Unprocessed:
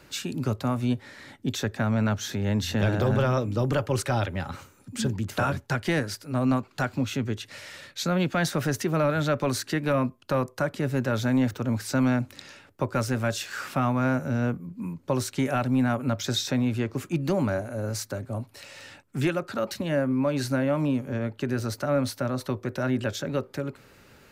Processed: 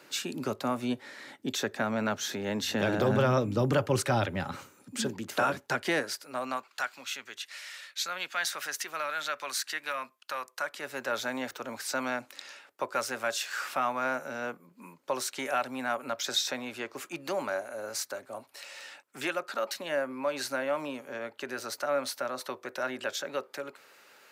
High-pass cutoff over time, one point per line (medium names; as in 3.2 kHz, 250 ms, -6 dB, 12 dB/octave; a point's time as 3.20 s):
2.64 s 300 Hz
3.32 s 130 Hz
4.43 s 130 Hz
5.11 s 310 Hz
5.78 s 310 Hz
6.93 s 1.3 kHz
10.46 s 1.3 kHz
11.13 s 610 Hz